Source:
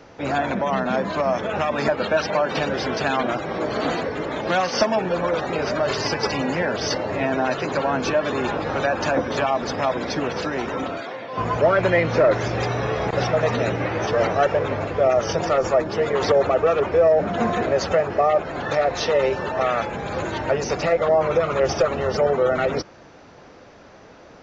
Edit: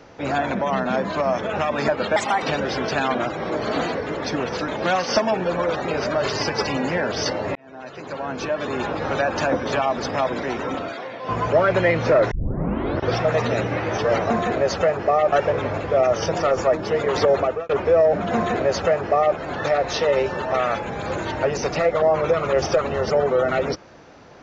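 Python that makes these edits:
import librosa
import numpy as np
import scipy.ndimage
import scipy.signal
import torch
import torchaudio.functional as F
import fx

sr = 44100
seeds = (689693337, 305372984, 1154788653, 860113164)

y = fx.edit(x, sr, fx.speed_span(start_s=2.16, length_s=0.35, speed=1.33),
    fx.fade_in_span(start_s=7.2, length_s=1.52),
    fx.move(start_s=10.08, length_s=0.44, to_s=4.33),
    fx.tape_start(start_s=12.4, length_s=0.88),
    fx.fade_out_span(start_s=16.47, length_s=0.29),
    fx.duplicate(start_s=17.41, length_s=1.02, to_s=14.39), tone=tone)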